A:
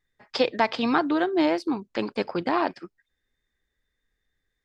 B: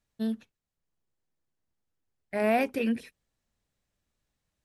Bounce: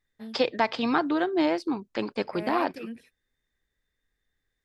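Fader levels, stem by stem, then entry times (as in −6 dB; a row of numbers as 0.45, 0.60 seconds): −2.0, −11.0 decibels; 0.00, 0.00 seconds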